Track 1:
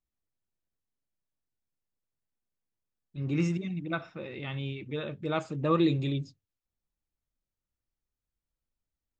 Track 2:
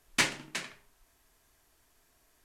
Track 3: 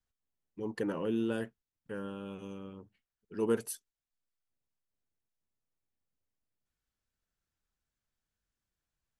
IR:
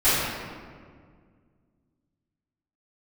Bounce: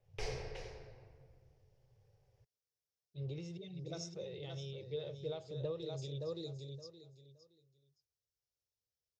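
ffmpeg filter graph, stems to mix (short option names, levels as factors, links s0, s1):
-filter_complex "[0:a]highpass=120,aexciter=amount=14.2:drive=4.8:freq=3800,volume=1,asplit=2[s0][s1];[s1]volume=0.335[s2];[1:a]aeval=exprs='val(0)*sin(2*PI*120*n/s)':c=same,volume=1.12,asplit=2[s3][s4];[s4]volume=0.133[s5];[s0][s3]amix=inputs=2:normalize=0,highshelf=f=4200:t=q:w=3:g=-11,acompressor=threshold=0.0316:ratio=10,volume=1[s6];[3:a]atrim=start_sample=2205[s7];[s5][s7]afir=irnorm=-1:irlink=0[s8];[s2]aecho=0:1:569|1138|1707:1|0.21|0.0441[s9];[s6][s8][s9]amix=inputs=3:normalize=0,firequalizer=gain_entry='entry(110,0);entry(250,-26);entry(430,0);entry(1200,-22);entry(2000,-19);entry(3200,-21);entry(5400,-8);entry(7700,-25)':delay=0.05:min_phase=1"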